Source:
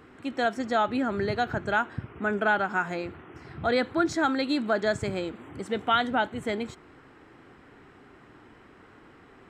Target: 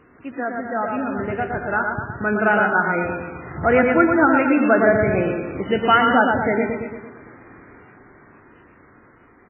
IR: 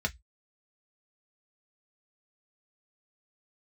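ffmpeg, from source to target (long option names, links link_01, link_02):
-filter_complex "[0:a]bandreject=frequency=800:width=20,dynaudnorm=framelen=270:gausssize=17:maxgain=11dB,asettb=1/sr,asplit=3[link_01][link_02][link_03];[link_01]atrim=end=5.394[link_04];[link_02]atrim=start=5.39:end=5.89,asetpts=PTS-STARTPTS,afade=type=in:duration=0.004:curve=qsin,afade=type=out:start_time=0.496:duration=0.004:curve=qsin,acrusher=bits=4:mode=log:mix=0:aa=0.000001[link_05];[link_03]atrim=start=5.886[link_06];[link_04][link_05]acrossfade=duration=0.004:curve1=hsin:curve2=qsin[link_07];[link_07][link_06]acrossfade=duration=0.004:curve1=qsin:curve2=hsin,aecho=1:1:114|228|342|456|570|684|798:0.631|0.347|0.191|0.105|0.0577|0.0318|0.0175" -ar 8000 -c:a libmp3lame -b:a 8k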